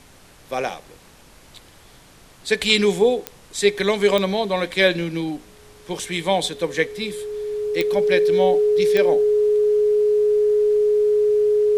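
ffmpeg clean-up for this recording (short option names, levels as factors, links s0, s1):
-af "adeclick=t=4,bandreject=f=420:w=30,agate=range=0.0891:threshold=0.01"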